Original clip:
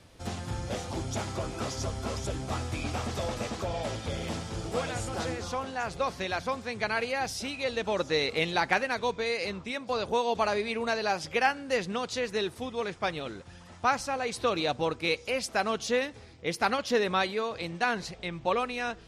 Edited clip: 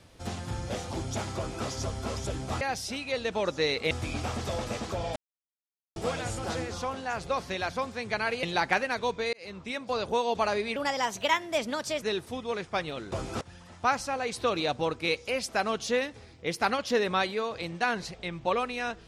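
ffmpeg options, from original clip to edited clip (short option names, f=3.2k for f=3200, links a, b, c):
-filter_complex "[0:a]asplit=11[a][b][c][d][e][f][g][h][i][j][k];[a]atrim=end=2.612[l];[b]atrim=start=7.128:end=8.432[m];[c]atrim=start=2.608:end=3.86,asetpts=PTS-STARTPTS,afade=t=out:st=1.248:d=0.004:c=hsin[n];[d]atrim=start=3.86:end=4.66,asetpts=PTS-STARTPTS,volume=0[o];[e]atrim=start=4.66:end=7.132,asetpts=PTS-STARTPTS,afade=t=in:d=0.004:c=hsin[p];[f]atrim=start=8.428:end=9.33,asetpts=PTS-STARTPTS,afade=t=out:st=0.898:d=0.004:c=hsin[q];[g]atrim=start=9.33:end=10.764,asetpts=PTS-STARTPTS,afade=t=in:d=0.38[r];[h]atrim=start=10.76:end=12.31,asetpts=PTS-STARTPTS,asetrate=54243,aresample=44100,atrim=end_sample=55573,asetpts=PTS-STARTPTS[s];[i]atrim=start=12.306:end=13.412[t];[j]atrim=start=1.368:end=1.662[u];[k]atrim=start=13.408[v];[l][m]acrossfade=d=0.004:c1=hsin:c2=hsin[w];[n][o][p]concat=n=3:v=0:a=1[x];[w][x]acrossfade=d=0.004:c1=hsin:c2=hsin[y];[q][r]concat=n=2:v=0:a=1[z];[y][z]acrossfade=d=0.004:c1=hsin:c2=hsin[aa];[aa][s]acrossfade=d=0.004:c1=hsin:c2=hsin[ab];[ab][t]acrossfade=d=0.004:c1=hsin:c2=hsin[ac];[ac][u]acrossfade=d=0.004:c1=hsin:c2=hsin[ad];[ad][v]acrossfade=d=0.004:c1=hsin:c2=hsin"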